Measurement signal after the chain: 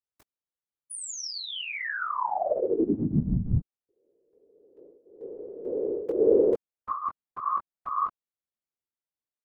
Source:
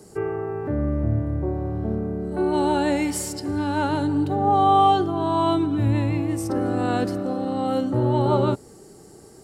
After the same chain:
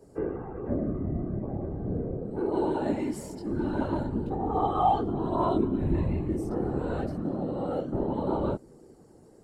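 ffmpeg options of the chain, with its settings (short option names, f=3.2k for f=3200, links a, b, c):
-af "flanger=delay=18:depth=3.3:speed=0.45,afftfilt=real='hypot(re,im)*cos(2*PI*random(0))':imag='hypot(re,im)*sin(2*PI*random(1))':win_size=512:overlap=0.75,tiltshelf=f=1.4k:g=6,volume=-2.5dB"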